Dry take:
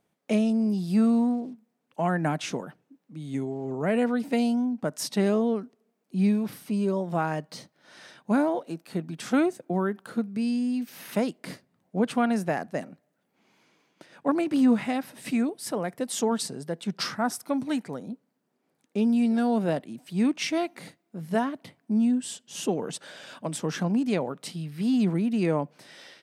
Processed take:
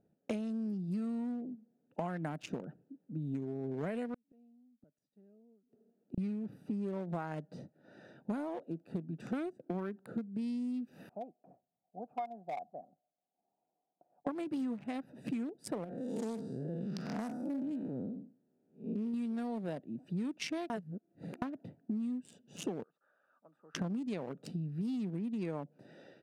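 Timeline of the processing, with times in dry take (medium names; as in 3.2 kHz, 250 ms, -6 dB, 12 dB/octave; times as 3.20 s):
4.14–6.18 s: inverted gate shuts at -27 dBFS, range -41 dB
11.09–14.27 s: cascade formant filter a
15.84–19.14 s: spectral blur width 196 ms
20.70–21.42 s: reverse
22.83–23.75 s: band-pass filter 1.2 kHz, Q 14
whole clip: local Wiener filter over 41 samples; compression 12:1, threshold -38 dBFS; trim +3.5 dB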